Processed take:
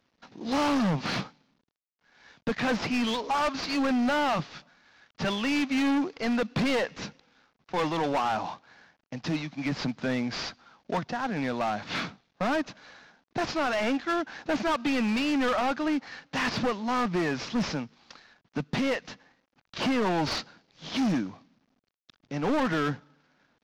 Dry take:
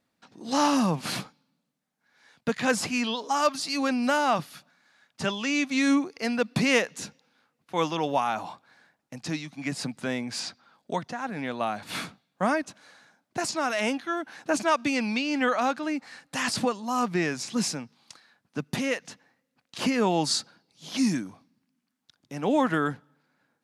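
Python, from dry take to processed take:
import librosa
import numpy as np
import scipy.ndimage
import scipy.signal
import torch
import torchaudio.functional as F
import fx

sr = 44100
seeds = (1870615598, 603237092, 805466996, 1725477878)

y = fx.cvsd(x, sr, bps=32000)
y = np.clip(y, -10.0 ** (-27.0 / 20.0), 10.0 ** (-27.0 / 20.0))
y = fx.high_shelf(y, sr, hz=4800.0, db=-7.0)
y = F.gain(torch.from_numpy(y), 4.0).numpy()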